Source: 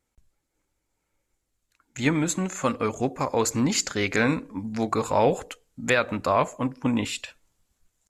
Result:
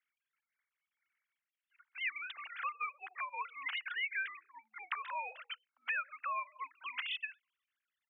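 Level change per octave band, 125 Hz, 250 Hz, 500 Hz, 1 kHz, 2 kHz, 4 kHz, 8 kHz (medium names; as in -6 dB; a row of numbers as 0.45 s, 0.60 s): under -40 dB, under -40 dB, -34.0 dB, -12.5 dB, -7.5 dB, -10.5 dB, under -40 dB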